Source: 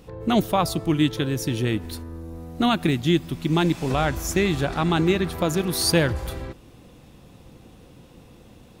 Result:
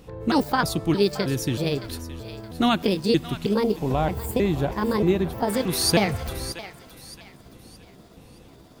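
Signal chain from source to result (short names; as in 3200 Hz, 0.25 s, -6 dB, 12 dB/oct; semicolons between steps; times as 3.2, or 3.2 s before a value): trilling pitch shifter +5 st, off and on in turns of 0.314 s; thinning echo 0.62 s, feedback 38%, high-pass 990 Hz, level -12 dB; spectral gain 3.54–5.49, 1100–11000 Hz -8 dB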